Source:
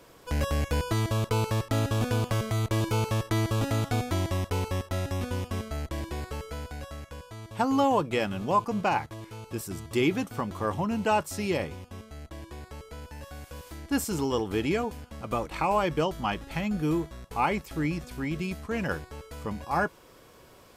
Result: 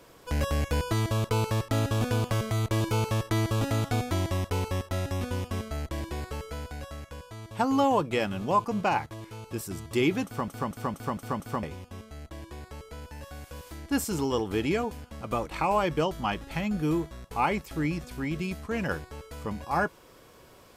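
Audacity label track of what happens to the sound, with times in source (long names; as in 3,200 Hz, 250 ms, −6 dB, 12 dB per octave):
10.250000	10.250000	stutter in place 0.23 s, 6 plays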